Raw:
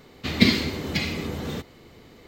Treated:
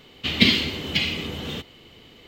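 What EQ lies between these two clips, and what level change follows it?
parametric band 3,000 Hz +14.5 dB 0.55 octaves
−2.0 dB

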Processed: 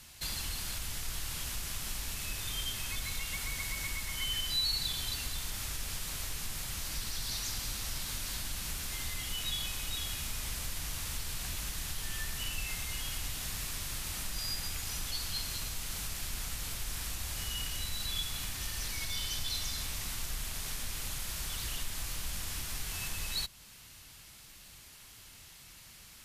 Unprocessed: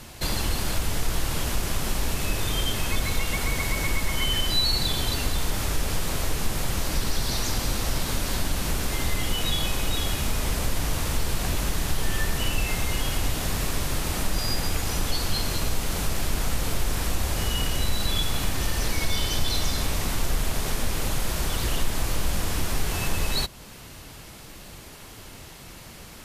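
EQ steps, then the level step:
guitar amp tone stack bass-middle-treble 5-5-5
0.0 dB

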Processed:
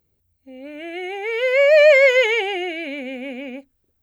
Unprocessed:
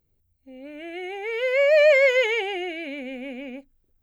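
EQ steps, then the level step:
high-pass filter 43 Hz
low-shelf EQ 220 Hz −3.5 dB
+5.0 dB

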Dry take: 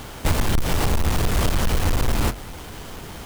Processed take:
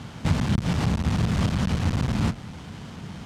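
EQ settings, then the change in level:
band-pass filter 110–6,200 Hz
low shelf with overshoot 270 Hz +9 dB, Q 1.5
−5.0 dB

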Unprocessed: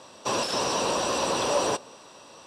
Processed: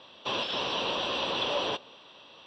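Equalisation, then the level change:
transistor ladder low-pass 3,600 Hz, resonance 70%
+5.0 dB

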